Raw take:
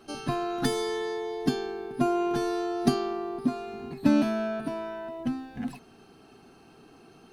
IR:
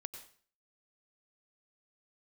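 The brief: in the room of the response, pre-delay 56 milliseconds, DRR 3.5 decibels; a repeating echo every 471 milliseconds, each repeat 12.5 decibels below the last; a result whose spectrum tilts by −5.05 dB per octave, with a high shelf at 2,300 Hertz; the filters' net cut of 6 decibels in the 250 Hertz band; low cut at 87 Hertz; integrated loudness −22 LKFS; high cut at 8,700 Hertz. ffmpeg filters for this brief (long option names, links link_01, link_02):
-filter_complex "[0:a]highpass=87,lowpass=8700,equalizer=frequency=250:width_type=o:gain=-7.5,highshelf=frequency=2300:gain=-7,aecho=1:1:471|942|1413:0.237|0.0569|0.0137,asplit=2[link_01][link_02];[1:a]atrim=start_sample=2205,adelay=56[link_03];[link_02][link_03]afir=irnorm=-1:irlink=0,volume=-0.5dB[link_04];[link_01][link_04]amix=inputs=2:normalize=0,volume=10dB"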